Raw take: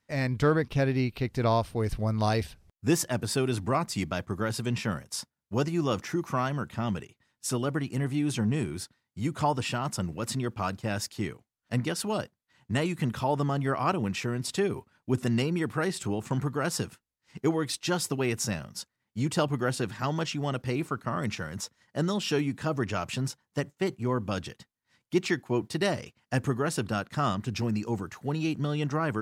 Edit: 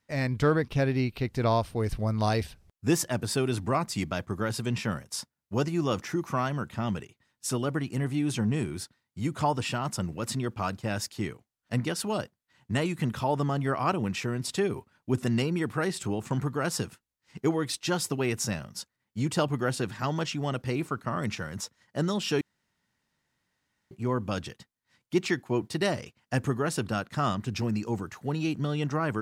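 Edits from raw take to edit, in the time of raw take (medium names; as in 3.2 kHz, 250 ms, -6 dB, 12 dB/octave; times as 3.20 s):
22.41–23.91 s: room tone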